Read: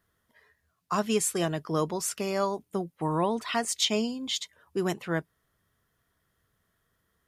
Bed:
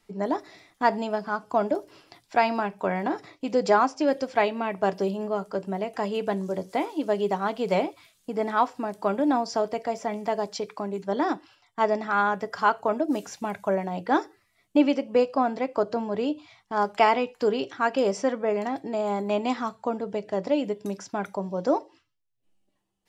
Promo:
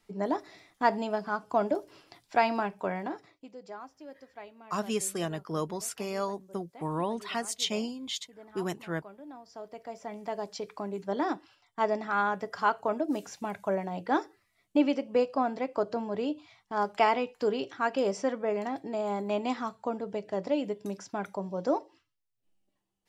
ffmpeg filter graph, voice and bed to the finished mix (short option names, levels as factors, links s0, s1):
-filter_complex "[0:a]adelay=3800,volume=0.596[s0];[1:a]volume=6.31,afade=t=out:st=2.62:d=0.92:silence=0.0944061,afade=t=in:st=9.44:d=1.42:silence=0.112202[s1];[s0][s1]amix=inputs=2:normalize=0"